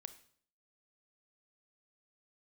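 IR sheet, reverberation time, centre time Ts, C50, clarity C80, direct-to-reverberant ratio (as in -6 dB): 0.55 s, 6 ms, 13.5 dB, 17.0 dB, 11.0 dB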